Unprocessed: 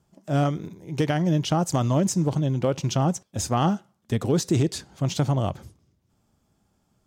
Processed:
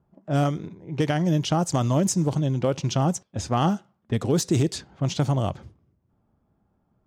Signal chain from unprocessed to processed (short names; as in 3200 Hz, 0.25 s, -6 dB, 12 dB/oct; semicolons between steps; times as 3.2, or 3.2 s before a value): low-pass opened by the level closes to 1300 Hz, open at -17.5 dBFS; high shelf 10000 Hz +10 dB